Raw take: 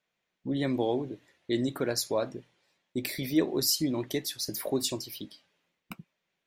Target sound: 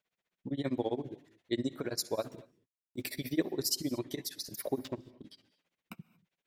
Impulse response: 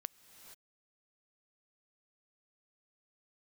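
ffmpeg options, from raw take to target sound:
-filter_complex "[0:a]asettb=1/sr,asplit=3[link_01][link_02][link_03];[link_01]atrim=end=2.164[link_04];[link_02]atrim=start=2.16:end=3.11,asetpts=PTS-STARTPTS,afade=type=in:duration=0.004:curve=qsin,afade=type=out:start_time=0.946:duration=0.004:curve=qsin,acrusher=bits=8:mix=0:aa=0.5[link_05];[link_03]atrim=start=3.106[link_06];[link_04][link_05]acrossfade=duration=0.004:curve1=hsin:curve2=qsin[link_07];[link_07][link_06]acrossfade=duration=0.004:curve1=qsin:curve2=hsin,asettb=1/sr,asplit=3[link_08][link_09][link_10];[link_08]atrim=end=4.774[link_11];[link_09]atrim=start=4.77:end=5.24,asetpts=PTS-STARTPTS,afade=type=in:duration=0.004:curve=qsin,afade=type=out:start_time=0.466:duration=0.004:curve=qsin,adynamicsmooth=sensitivity=3:basefreq=540[link_12];[link_10]atrim=start=5.236[link_13];[link_11][link_12]acrossfade=duration=0.004:curve1=hsin:curve2=qsin[link_14];[link_14][link_13]acrossfade=duration=0.004:curve1=qsin:curve2=hsin,tremolo=f=15:d=0.97[link_15];[1:a]atrim=start_sample=2205,afade=type=out:start_time=0.29:duration=0.01,atrim=end_sample=13230[link_16];[link_15][link_16]afir=irnorm=-1:irlink=0,volume=3dB"

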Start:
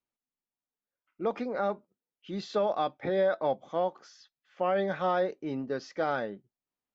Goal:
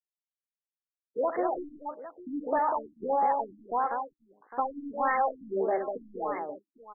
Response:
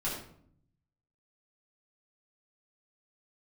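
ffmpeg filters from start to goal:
-filter_complex "[0:a]bandreject=frequency=70.59:width_type=h:width=4,bandreject=frequency=141.18:width_type=h:width=4,bandreject=frequency=211.77:width_type=h:width=4,bandreject=frequency=282.36:width_type=h:width=4,bandreject=frequency=352.95:width_type=h:width=4,bandreject=frequency=423.54:width_type=h:width=4,asplit=2[link_01][link_02];[link_02]highpass=frequency=720:poles=1,volume=9dB,asoftclip=type=tanh:threshold=-17.5dB[link_03];[link_01][link_03]amix=inputs=2:normalize=0,lowpass=frequency=5100:poles=1,volume=-6dB,equalizer=frequency=340:width_type=o:width=0.42:gain=5,afwtdn=0.00891,asplit=2[link_04][link_05];[link_05]asoftclip=type=tanh:threshold=-32dB,volume=-6dB[link_06];[link_04][link_06]amix=inputs=2:normalize=0,acompressor=threshold=-36dB:ratio=3,asetrate=64194,aresample=44100,atempo=0.686977,afftfilt=real='re*gte(hypot(re,im),0.00126)':imag='im*gte(hypot(re,im),0.00126)':win_size=1024:overlap=0.75,asplit=2[link_07][link_08];[link_08]aecho=0:1:67|195|807:0.237|0.562|0.168[link_09];[link_07][link_09]amix=inputs=2:normalize=0,afftfilt=real='re*lt(b*sr/1024,300*pow(2200/300,0.5+0.5*sin(2*PI*1.6*pts/sr)))':imag='im*lt(b*sr/1024,300*pow(2200/300,0.5+0.5*sin(2*PI*1.6*pts/sr)))':win_size=1024:overlap=0.75,volume=8dB"

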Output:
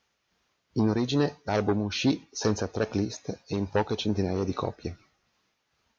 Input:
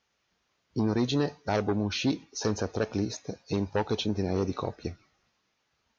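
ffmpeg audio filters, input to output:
ffmpeg -i in.wav -af "tremolo=f=2.4:d=0.37,volume=3dB" out.wav

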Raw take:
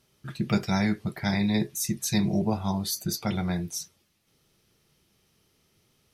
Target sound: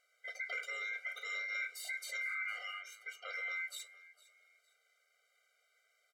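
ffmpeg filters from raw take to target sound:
ffmpeg -i in.wav -filter_complex "[0:a]asettb=1/sr,asplit=3[link_01][link_02][link_03];[link_01]atrim=end=2.674[link_04];[link_02]atrim=start=2.67:end=3.34,asetpts=PTS-STARTPTS,afade=type=in:duration=0.004:curve=qsin,afade=type=out:start_time=0.666:duration=0.004:curve=qsin,acrossover=split=430 2800:gain=0.224 1 0.126[link_05][link_06][link_07];[link_05][link_06][link_07]amix=inputs=3:normalize=0[link_08];[link_03]atrim=start=3.336[link_09];[link_04][link_08]acrossfade=duration=0.004:curve1=hsin:curve2=qsin[link_10];[link_10][link_09]acrossfade=duration=0.004:curve1=qsin:curve2=hsin,aeval=exprs='val(0)*sin(2*PI*1900*n/s)':channel_layout=same,asettb=1/sr,asplit=3[link_11][link_12][link_13];[link_11]atrim=end=0.884[link_14];[link_12]atrim=start=0.88:end=2.11,asetpts=PTS-STARTPTS,afade=type=in:duration=0.004:curve=qsin,afade=type=out:start_time=1.226:duration=0.004:curve=qsin,asplit=2[link_15][link_16];[link_16]adelay=43,volume=-10dB[link_17];[link_15][link_17]amix=inputs=2:normalize=0,atrim=end_sample=54243[link_18];[link_13]atrim=start=2.106[link_19];[link_14][link_18]acrossfade=duration=0.004:curve1=hsin:curve2=qsin[link_20];[link_20][link_19]acrossfade=duration=0.004:curve1=qsin:curve2=hsin,alimiter=level_in=2.5dB:limit=-24dB:level=0:latency=1:release=21,volume=-2.5dB,highshelf=frequency=9800:gain=-9.5,asplit=3[link_21][link_22][link_23];[link_22]adelay=457,afreqshift=40,volume=-20dB[link_24];[link_23]adelay=914,afreqshift=80,volume=-30.2dB[link_25];[link_21][link_24][link_25]amix=inputs=3:normalize=0,afftfilt=real='re*eq(mod(floor(b*sr/1024/400),2),1)':imag='im*eq(mod(floor(b*sr/1024/400),2),1)':win_size=1024:overlap=0.75,volume=-1dB" out.wav

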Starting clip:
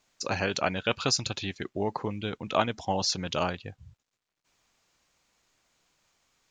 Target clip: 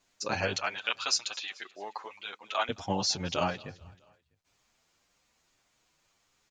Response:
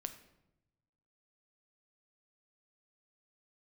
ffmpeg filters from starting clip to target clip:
-filter_complex "[0:a]asettb=1/sr,asplit=3[link_01][link_02][link_03];[link_01]atrim=end=0.564[link_04];[link_02]atrim=start=0.56:end=2.69,asetpts=PTS-STARTPTS,afade=type=in:duration=0.004:curve=qsin,afade=type=out:start_time=2.126:duration=0.004:curve=qsin,highpass=970[link_05];[link_03]atrim=start=2.686[link_06];[link_04][link_05]acrossfade=duration=0.004:curve1=hsin:curve2=qsin[link_07];[link_07][link_06]acrossfade=duration=0.004:curve1=qsin:curve2=hsin,asplit=2[link_08][link_09];[link_09]aecho=0:1:217|434|651:0.0668|0.0354|0.0188[link_10];[link_08][link_10]amix=inputs=2:normalize=0,asplit=2[link_11][link_12];[link_12]adelay=8.3,afreqshift=1.8[link_13];[link_11][link_13]amix=inputs=2:normalize=1,volume=2dB"

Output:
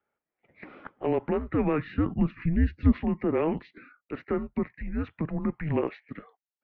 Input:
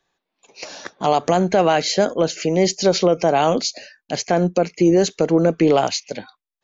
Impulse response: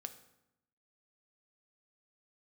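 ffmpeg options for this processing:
-filter_complex "[0:a]highpass=frequency=480:width_type=q:width=0.5412,highpass=frequency=480:width_type=q:width=1.307,lowpass=frequency=2600:width_type=q:width=0.5176,lowpass=frequency=2600:width_type=q:width=0.7071,lowpass=frequency=2600:width_type=q:width=1.932,afreqshift=-310,asettb=1/sr,asplit=3[link_01][link_02][link_03];[link_01]atrim=end=1.304[link_04];[link_02]atrim=start=1.3:end=2.92,asetpts=PTS-STARTPTS,afade=type=in:duration=0.004:curve=qsin,afade=type=out:start_time=1.616:duration=0.004:curve=qsin,asubboost=boost=9:cutoff=230[link_05];[link_03]atrim=start=2.916[link_06];[link_04][link_05]acrossfade=duration=0.004:curve1=hsin:curve2=qsin[link_07];[link_07][link_06]acrossfade=duration=0.004:curve1=qsin:curve2=hsin,volume=-8dB"

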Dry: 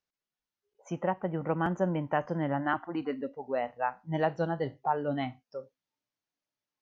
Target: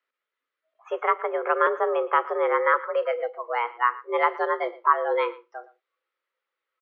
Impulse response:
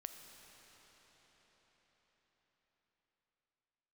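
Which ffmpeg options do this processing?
-filter_complex "[0:a]asettb=1/sr,asplit=3[link_01][link_02][link_03];[link_01]atrim=end=1.624[link_04];[link_02]atrim=start=1.62:end=2.45,asetpts=PTS-STARTPTS,afade=type=in:duration=0.004:curve=qsin,afade=type=out:start_time=0.826:duration=0.004:curve=qsin,equalizer=frequency=1800:width=7.9:gain=-12.5[link_05];[link_03]atrim=start=2.446[link_06];[link_04][link_05]acrossfade=duration=0.004:curve1=hsin:curve2=qsin[link_07];[link_07][link_06]acrossfade=duration=0.004:curve1=qsin:curve2=hsin,acrossover=split=550|1100[link_08][link_09][link_10];[link_10]alimiter=level_in=5dB:limit=-24dB:level=0:latency=1:release=399,volume=-5dB[link_11];[link_08][link_09][link_11]amix=inputs=3:normalize=0,afreqshift=230,highpass=420,equalizer=frequency=520:width_type=q:width=4:gain=6,equalizer=frequency=760:width_type=q:width=4:gain=-9,equalizer=frequency=1300:width_type=q:width=4:gain=10,equalizer=frequency=2000:width_type=q:width=4:gain=6,lowpass=frequency=3600:width=0.5412,lowpass=frequency=3600:width=1.3066,aecho=1:1:115:0.106,volume=6.5dB"

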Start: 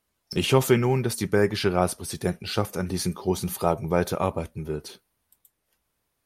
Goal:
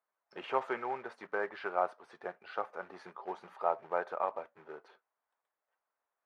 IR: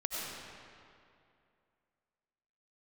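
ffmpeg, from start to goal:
-af "acrusher=bits=4:mode=log:mix=0:aa=0.000001,asuperpass=centerf=1000:order=4:qfactor=0.92,volume=-5dB"

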